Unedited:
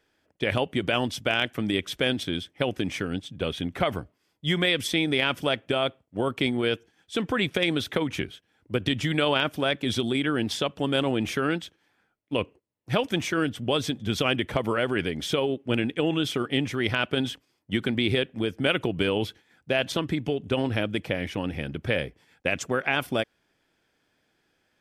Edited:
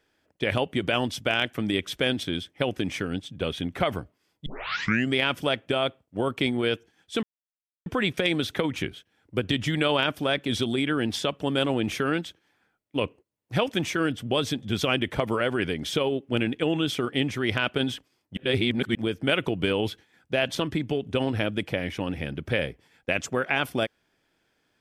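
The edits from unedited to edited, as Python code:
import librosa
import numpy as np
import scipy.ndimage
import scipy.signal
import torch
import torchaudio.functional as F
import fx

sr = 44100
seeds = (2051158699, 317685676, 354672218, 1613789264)

y = fx.edit(x, sr, fx.tape_start(start_s=4.46, length_s=0.7),
    fx.insert_silence(at_s=7.23, length_s=0.63),
    fx.reverse_span(start_s=17.74, length_s=0.58), tone=tone)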